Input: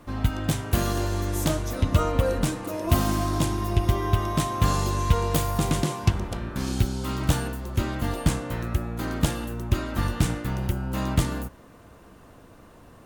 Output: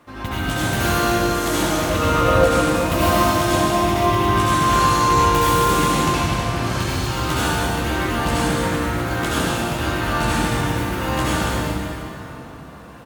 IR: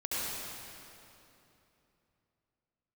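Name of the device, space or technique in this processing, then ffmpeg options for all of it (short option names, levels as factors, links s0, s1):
stadium PA: -filter_complex "[0:a]highpass=f=150:p=1,equalizer=f=1800:t=o:w=2.8:g=5.5,aecho=1:1:148.7|212.8:0.316|0.251[s0];[1:a]atrim=start_sample=2205[s1];[s0][s1]afir=irnorm=-1:irlink=0"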